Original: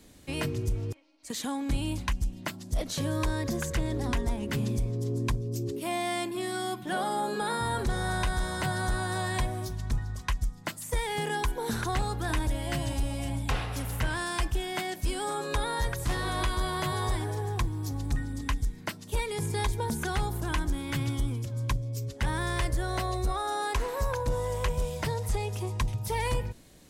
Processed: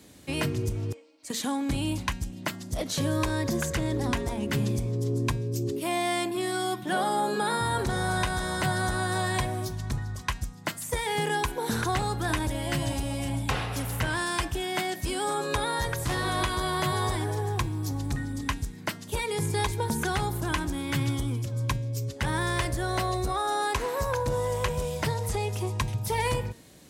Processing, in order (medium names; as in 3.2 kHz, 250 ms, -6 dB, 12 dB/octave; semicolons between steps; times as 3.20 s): high-pass 80 Hz; de-hum 231.7 Hz, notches 39; trim +3.5 dB